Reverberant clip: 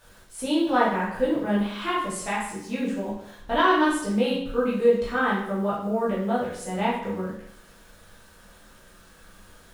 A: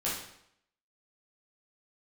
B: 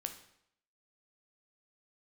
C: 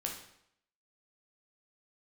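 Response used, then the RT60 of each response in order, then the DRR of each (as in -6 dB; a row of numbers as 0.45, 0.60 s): A; 0.70, 0.70, 0.70 s; -8.0, 5.5, -0.5 dB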